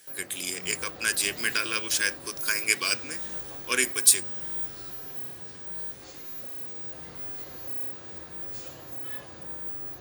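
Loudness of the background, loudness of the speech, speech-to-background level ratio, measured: −34.0 LKFS, −25.5 LKFS, 8.5 dB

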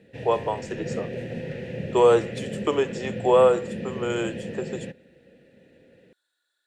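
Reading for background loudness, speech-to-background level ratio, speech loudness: −34.0 LKFS, 10.5 dB, −23.5 LKFS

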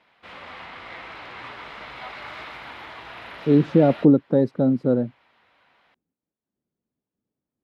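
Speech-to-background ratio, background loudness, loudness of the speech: 19.0 dB, −38.5 LKFS, −19.5 LKFS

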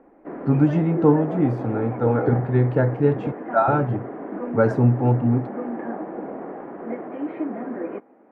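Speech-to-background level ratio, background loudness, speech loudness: 10.5 dB, −31.5 LKFS, −21.0 LKFS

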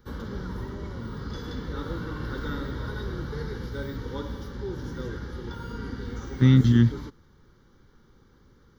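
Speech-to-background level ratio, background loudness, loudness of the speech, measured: 15.5 dB, −35.5 LKFS, −20.0 LKFS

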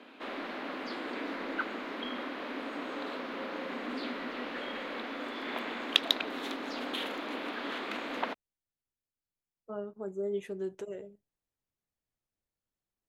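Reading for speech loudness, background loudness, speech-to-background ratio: −38.5 LKFS, −36.0 LKFS, −2.5 dB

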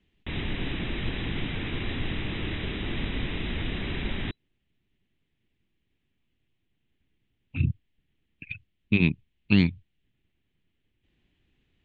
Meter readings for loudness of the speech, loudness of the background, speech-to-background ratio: −25.5 LKFS, −32.5 LKFS, 7.0 dB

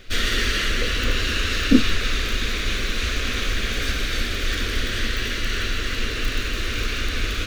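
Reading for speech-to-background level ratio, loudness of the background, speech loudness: 2.0 dB, −24.0 LKFS, −22.0 LKFS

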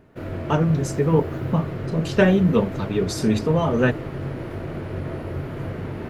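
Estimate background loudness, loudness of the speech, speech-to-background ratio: −30.5 LKFS, −21.5 LKFS, 9.0 dB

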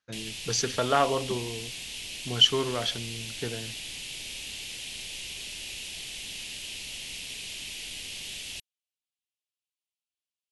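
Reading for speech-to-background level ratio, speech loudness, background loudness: 9.5 dB, −26.5 LKFS, −36.0 LKFS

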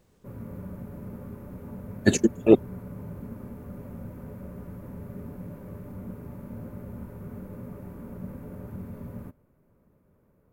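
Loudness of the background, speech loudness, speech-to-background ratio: −41.0 LKFS, −22.0 LKFS, 19.0 dB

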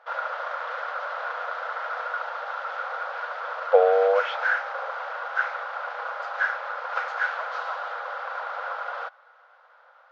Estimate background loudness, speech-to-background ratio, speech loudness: −30.0 LKFS, 8.5 dB, −21.5 LKFS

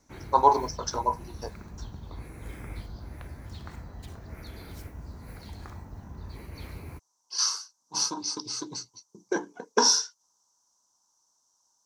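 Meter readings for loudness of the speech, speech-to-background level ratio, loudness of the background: −26.5 LKFS, 17.0 dB, −43.5 LKFS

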